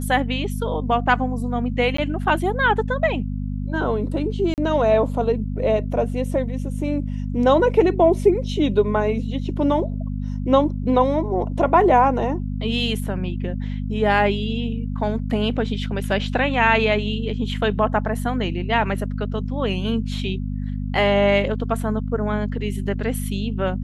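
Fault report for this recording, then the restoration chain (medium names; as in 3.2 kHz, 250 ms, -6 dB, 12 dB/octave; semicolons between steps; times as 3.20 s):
hum 50 Hz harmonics 5 -26 dBFS
1.97–1.98 s: dropout 14 ms
4.54–4.58 s: dropout 38 ms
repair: de-hum 50 Hz, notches 5; interpolate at 1.97 s, 14 ms; interpolate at 4.54 s, 38 ms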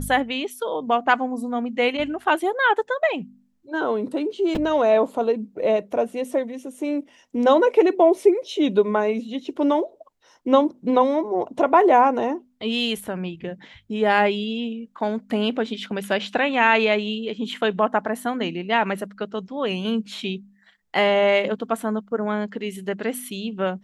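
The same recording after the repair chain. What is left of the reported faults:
nothing left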